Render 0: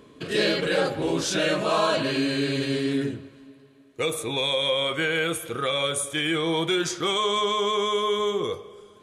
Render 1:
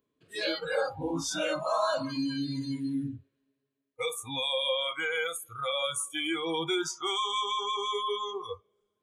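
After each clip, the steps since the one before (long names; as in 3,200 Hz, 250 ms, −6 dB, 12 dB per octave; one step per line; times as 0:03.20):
noise reduction from a noise print of the clip's start 25 dB
level −4.5 dB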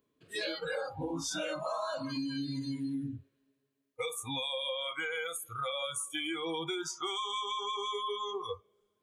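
downward compressor, threshold −35 dBFS, peak gain reduction 11 dB
level +2 dB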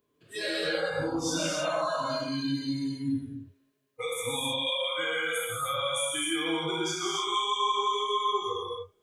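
reverb whose tail is shaped and stops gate 330 ms flat, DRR −5 dB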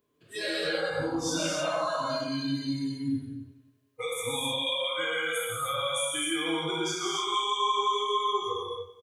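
repeating echo 93 ms, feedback 59%, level −16.5 dB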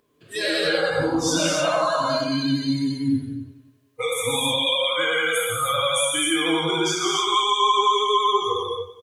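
pitch vibrato 11 Hz 33 cents
level +8 dB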